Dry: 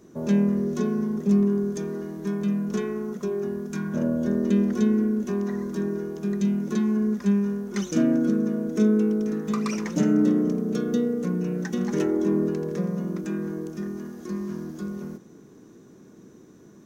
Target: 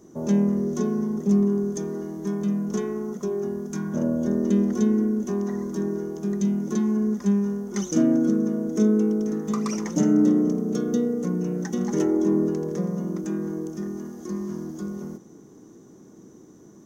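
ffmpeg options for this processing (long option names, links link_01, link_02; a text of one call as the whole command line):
ffmpeg -i in.wav -af "equalizer=frequency=315:width_type=o:width=0.33:gain=3,equalizer=frequency=800:width_type=o:width=0.33:gain=4,equalizer=frequency=1600:width_type=o:width=0.33:gain=-5,equalizer=frequency=2500:width_type=o:width=0.33:gain=-8,equalizer=frequency=4000:width_type=o:width=0.33:gain=-5,equalizer=frequency=6300:width_type=o:width=0.33:gain=6" out.wav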